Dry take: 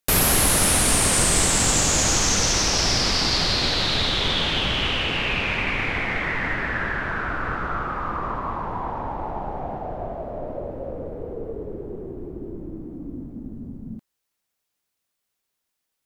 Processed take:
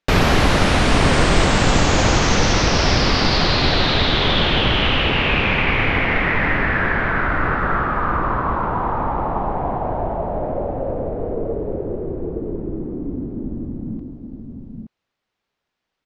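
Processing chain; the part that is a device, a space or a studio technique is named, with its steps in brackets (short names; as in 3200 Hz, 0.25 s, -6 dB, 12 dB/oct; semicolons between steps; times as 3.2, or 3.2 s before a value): shout across a valley (air absorption 200 m; outdoor echo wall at 150 m, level -6 dB); gain +7.5 dB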